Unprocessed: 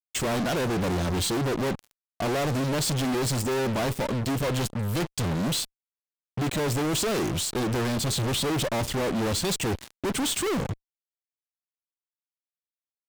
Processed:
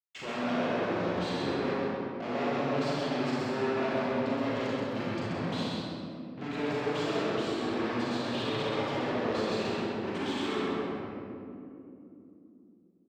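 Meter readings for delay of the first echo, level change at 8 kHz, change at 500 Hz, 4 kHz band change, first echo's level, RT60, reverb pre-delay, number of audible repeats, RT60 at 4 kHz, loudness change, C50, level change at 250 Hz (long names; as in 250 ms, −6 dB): 131 ms, −21.5 dB, −2.0 dB, −7.5 dB, −2.5 dB, 2.9 s, 36 ms, 1, 1.3 s, −5.0 dB, −6.0 dB, −3.0 dB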